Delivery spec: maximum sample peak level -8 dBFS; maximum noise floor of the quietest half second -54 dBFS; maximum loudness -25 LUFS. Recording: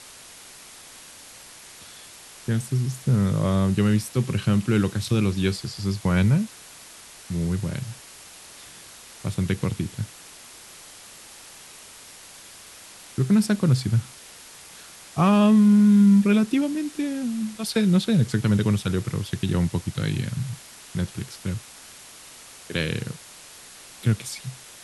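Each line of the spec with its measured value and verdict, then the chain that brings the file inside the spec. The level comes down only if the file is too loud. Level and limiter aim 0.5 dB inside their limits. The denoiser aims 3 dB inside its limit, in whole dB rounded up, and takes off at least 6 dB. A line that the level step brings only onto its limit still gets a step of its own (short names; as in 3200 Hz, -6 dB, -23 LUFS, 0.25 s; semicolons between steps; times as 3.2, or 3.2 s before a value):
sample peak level -9.0 dBFS: OK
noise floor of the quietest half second -45 dBFS: fail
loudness -23.0 LUFS: fail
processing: denoiser 10 dB, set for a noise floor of -45 dBFS; gain -2.5 dB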